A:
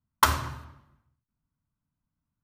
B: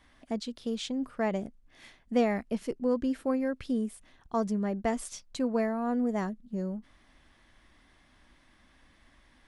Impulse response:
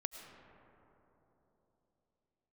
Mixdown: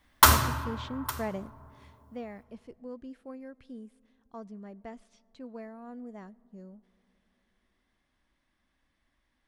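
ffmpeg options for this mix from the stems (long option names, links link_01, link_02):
-filter_complex "[0:a]highshelf=frequency=7100:gain=10.5,volume=2dB,asplit=3[link_01][link_02][link_03];[link_02]volume=-5dB[link_04];[link_03]volume=-18.5dB[link_05];[1:a]acrossover=split=4400[link_06][link_07];[link_07]acompressor=threshold=-60dB:ratio=4:attack=1:release=60[link_08];[link_06][link_08]amix=inputs=2:normalize=0,volume=-5.5dB,afade=type=out:start_time=1.54:duration=0.45:silence=0.316228,asplit=2[link_09][link_10];[link_10]volume=-17dB[link_11];[2:a]atrim=start_sample=2205[link_12];[link_04][link_11]amix=inputs=2:normalize=0[link_13];[link_13][link_12]afir=irnorm=-1:irlink=0[link_14];[link_05]aecho=0:1:858:1[link_15];[link_01][link_09][link_14][link_15]amix=inputs=4:normalize=0,asoftclip=type=hard:threshold=-9dB"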